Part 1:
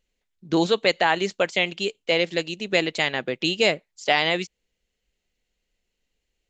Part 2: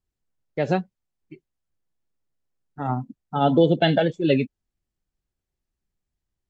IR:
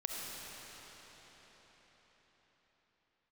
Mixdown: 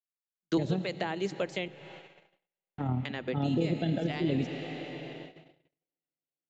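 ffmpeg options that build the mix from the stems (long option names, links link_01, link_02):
-filter_complex "[0:a]lowshelf=frequency=260:gain=-10.5,volume=0.5dB,asplit=3[link_01][link_02][link_03];[link_01]atrim=end=1.68,asetpts=PTS-STARTPTS,afade=type=out:start_time=1.676:duration=0.004:curve=hsin[link_04];[link_02]atrim=start=1.68:end=3.05,asetpts=PTS-STARTPTS,volume=0[link_05];[link_03]atrim=start=3.05,asetpts=PTS-STARTPTS,afade=type=in:duration=0.004:curve=hsin[link_06];[link_04][link_05][link_06]concat=n=3:v=0:a=1,asplit=2[link_07][link_08];[link_08]volume=-19.5dB[link_09];[1:a]equalizer=frequency=1100:width_type=o:width=2.1:gain=-6.5,acompressor=threshold=-24dB:ratio=3,tremolo=f=37:d=0.462,volume=-1dB,asplit=3[link_10][link_11][link_12];[link_11]volume=-8dB[link_13];[link_12]apad=whole_len=286470[link_14];[link_07][link_14]sidechaincompress=threshold=-44dB:ratio=8:attack=16:release=167[link_15];[2:a]atrim=start_sample=2205[link_16];[link_09][link_13]amix=inputs=2:normalize=0[link_17];[link_17][link_16]afir=irnorm=-1:irlink=0[link_18];[link_15][link_10][link_18]amix=inputs=3:normalize=0,agate=range=-47dB:threshold=-43dB:ratio=16:detection=peak,acrossover=split=390[link_19][link_20];[link_20]acompressor=threshold=-38dB:ratio=4[link_21];[link_19][link_21]amix=inputs=2:normalize=0"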